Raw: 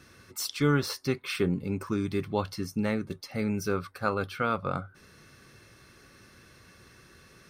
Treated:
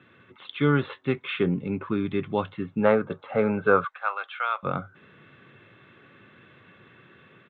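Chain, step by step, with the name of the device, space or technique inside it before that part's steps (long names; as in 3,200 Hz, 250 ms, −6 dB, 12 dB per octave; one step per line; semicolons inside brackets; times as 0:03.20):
0:02.81–0:03.88: gain on a spectral selection 420–1,700 Hz +11 dB
0:03.84–0:04.63: high-pass filter 750 Hz 24 dB per octave
Bluetooth headset (high-pass filter 110 Hz 24 dB per octave; automatic gain control gain up to 3 dB; downsampling to 8,000 Hz; SBC 64 kbit/s 16,000 Hz)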